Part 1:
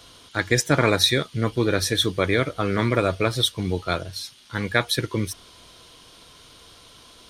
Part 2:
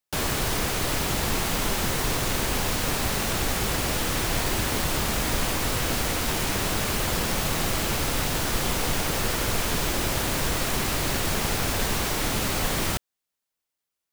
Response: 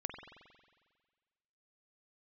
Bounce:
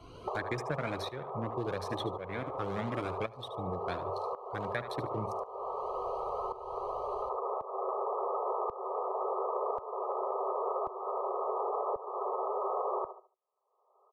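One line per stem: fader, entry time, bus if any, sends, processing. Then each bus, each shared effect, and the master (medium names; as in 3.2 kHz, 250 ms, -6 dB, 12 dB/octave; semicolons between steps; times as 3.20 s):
-9.0 dB, 0.00 s, no send, echo send -14 dB, local Wiener filter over 25 samples; Shepard-style flanger rising 2 Hz
+2.5 dB, 0.15 s, no send, echo send -12 dB, FFT band-pass 370–1300 Hz; auto duck -18 dB, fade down 0.40 s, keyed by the first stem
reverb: none
echo: feedback delay 73 ms, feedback 16%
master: tremolo saw up 0.92 Hz, depth 80%; three bands compressed up and down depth 100%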